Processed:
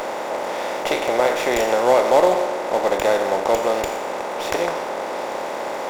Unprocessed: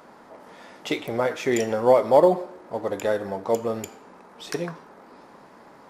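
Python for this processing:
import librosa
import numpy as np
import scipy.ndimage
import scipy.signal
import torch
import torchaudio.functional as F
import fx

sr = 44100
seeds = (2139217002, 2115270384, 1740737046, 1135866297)

y = fx.bin_compress(x, sr, power=0.4)
y = fx.highpass(y, sr, hz=690.0, slope=6)
y = fx.running_max(y, sr, window=3)
y = y * librosa.db_to_amplitude(2.0)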